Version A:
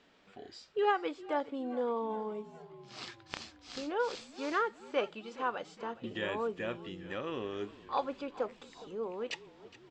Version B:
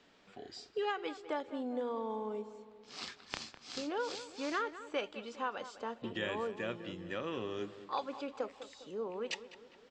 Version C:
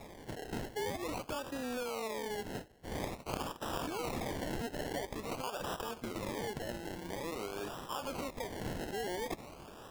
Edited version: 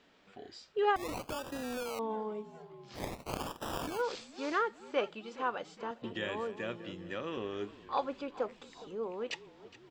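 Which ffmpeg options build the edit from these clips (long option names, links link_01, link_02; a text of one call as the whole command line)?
ffmpeg -i take0.wav -i take1.wav -i take2.wav -filter_complex "[2:a]asplit=2[link_01][link_02];[0:a]asplit=4[link_03][link_04][link_05][link_06];[link_03]atrim=end=0.962[link_07];[link_01]atrim=start=0.958:end=1.992[link_08];[link_04]atrim=start=1.988:end=3.03[link_09];[link_02]atrim=start=2.93:end=4.04[link_10];[link_05]atrim=start=3.94:end=5.912[link_11];[1:a]atrim=start=5.908:end=7.372[link_12];[link_06]atrim=start=7.368[link_13];[link_07][link_08]acrossfade=duration=0.004:curve1=hsin:curve2=hsin[link_14];[link_14][link_09]acrossfade=duration=0.004:curve1=hsin:curve2=hsin[link_15];[link_15][link_10]acrossfade=duration=0.1:curve1=tri:curve2=tri[link_16];[link_16][link_11]acrossfade=duration=0.1:curve1=tri:curve2=tri[link_17];[link_17][link_12]acrossfade=duration=0.004:curve1=hsin:curve2=hsin[link_18];[link_18][link_13]acrossfade=duration=0.004:curve1=hsin:curve2=hsin" out.wav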